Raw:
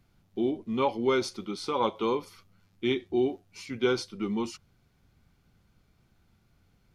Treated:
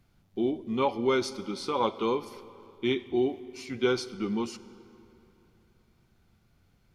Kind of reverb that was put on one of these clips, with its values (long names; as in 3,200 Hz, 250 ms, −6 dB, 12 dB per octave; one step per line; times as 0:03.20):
comb and all-pass reverb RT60 3.1 s, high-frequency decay 0.75×, pre-delay 15 ms, DRR 16 dB